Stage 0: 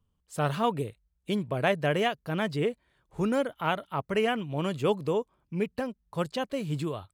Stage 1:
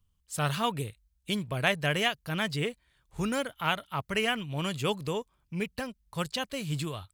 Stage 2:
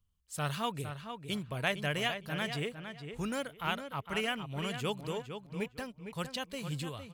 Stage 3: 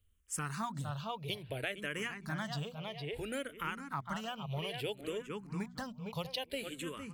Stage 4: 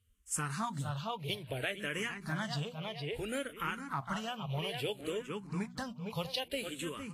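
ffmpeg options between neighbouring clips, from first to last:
-filter_complex "[0:a]equalizer=f=420:w=0.31:g=-14,asplit=2[a][b];[b]aeval=exprs='sgn(val(0))*max(abs(val(0))-0.00188,0)':c=same,volume=-10dB[c];[a][c]amix=inputs=2:normalize=0,volume=6dB"
-filter_complex "[0:a]asplit=2[a][b];[b]adelay=458,lowpass=f=3.3k:p=1,volume=-8dB,asplit=2[c][d];[d]adelay=458,lowpass=f=3.3k:p=1,volume=0.23,asplit=2[e][f];[f]adelay=458,lowpass=f=3.3k:p=1,volume=0.23[g];[a][c][e][g]amix=inputs=4:normalize=0,volume=-5.5dB"
-filter_complex "[0:a]bandreject=f=60:t=h:w=6,bandreject=f=120:t=h:w=6,bandreject=f=180:t=h:w=6,bandreject=f=240:t=h:w=6,acompressor=threshold=-40dB:ratio=5,asplit=2[a][b];[b]afreqshift=-0.6[c];[a][c]amix=inputs=2:normalize=1,volume=7dB"
-af "volume=2dB" -ar 44100 -c:a libvorbis -b:a 32k

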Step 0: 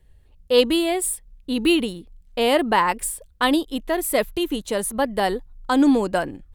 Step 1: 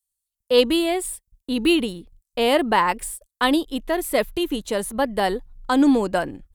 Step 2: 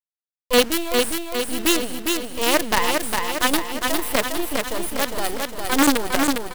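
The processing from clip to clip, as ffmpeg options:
-filter_complex "[0:a]acrossover=split=5800[a][b];[a]agate=range=-47dB:threshold=-42dB:ratio=16:detection=peak[c];[b]alimiter=limit=-23dB:level=0:latency=1[d];[c][d]amix=inputs=2:normalize=0"
-filter_complex "[0:a]highshelf=f=9.9k:g=11.5,acrusher=bits=3:dc=4:mix=0:aa=0.000001,asplit=2[a][b];[b]aecho=0:1:406|812|1218|1624|2030|2436|2842|3248:0.631|0.353|0.198|0.111|0.0621|0.0347|0.0195|0.0109[c];[a][c]amix=inputs=2:normalize=0,volume=-1dB"

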